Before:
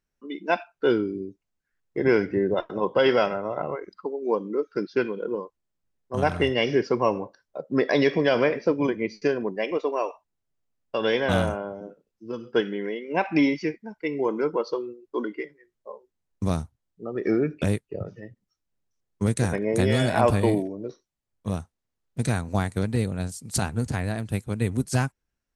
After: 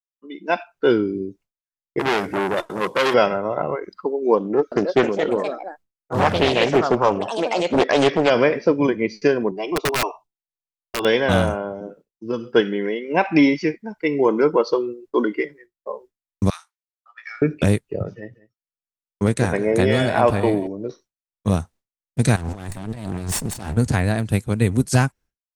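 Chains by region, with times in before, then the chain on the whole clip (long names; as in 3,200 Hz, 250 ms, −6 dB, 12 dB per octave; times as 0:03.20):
0:01.99–0:03.14: variable-slope delta modulation 64 kbit/s + saturating transformer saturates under 2,200 Hz
0:04.37–0:08.30: delay with pitch and tempo change per echo 347 ms, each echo +4 semitones, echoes 2, each echo −6 dB + highs frequency-modulated by the lows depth 0.54 ms
0:09.51–0:11.05: high-shelf EQ 6,700 Hz −6.5 dB + phaser with its sweep stopped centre 350 Hz, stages 8 + wrap-around overflow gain 22.5 dB
0:16.50–0:17.42: Bessel high-pass filter 1,900 Hz, order 8 + high-shelf EQ 4,400 Hz −11 dB + double-tracking delay 18 ms −5 dB
0:18.14–0:20.67: bass and treble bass −5 dB, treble −7 dB + single-tap delay 189 ms −16.5 dB
0:22.36–0:23.77: lower of the sound and its delayed copy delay 1.1 ms + compressor whose output falls as the input rises −38 dBFS + highs frequency-modulated by the lows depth 0.2 ms
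whole clip: downward expander −49 dBFS; automatic gain control gain up to 13 dB; level −2.5 dB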